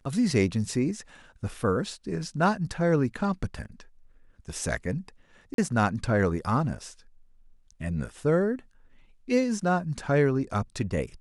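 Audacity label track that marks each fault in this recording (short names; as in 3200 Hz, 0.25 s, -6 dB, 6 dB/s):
5.540000	5.580000	gap 42 ms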